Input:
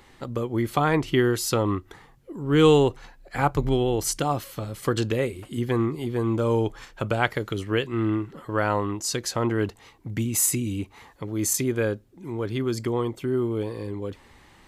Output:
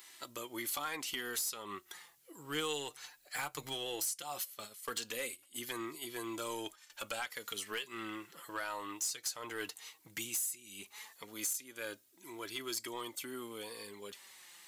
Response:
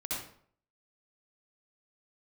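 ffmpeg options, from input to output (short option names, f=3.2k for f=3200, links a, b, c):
-filter_complex "[0:a]asettb=1/sr,asplit=3[a][b][c];[a]atrim=end=4.224[d];[b]atrim=start=4.22:end=6.9,asetpts=PTS-STARTPTS,afade=t=in:d=0.004:c=qsin,afade=t=out:st=2.676:d=0.004:c=qsin,agate=range=-17dB:threshold=-31dB:ratio=16:detection=peak[e];[c]atrim=start=6.896[f];[d][e]acrossfade=d=0.004:c1=hsin:c2=qsin[g];[g][f]acrossfade=d=0.004:c1=qsin:c2=hsin,aderivative,acompressor=threshold=-40dB:ratio=12,asoftclip=type=tanh:threshold=-37dB,flanger=delay=3:depth=3.7:regen=38:speed=0.16:shape=sinusoidal,volume=12dB"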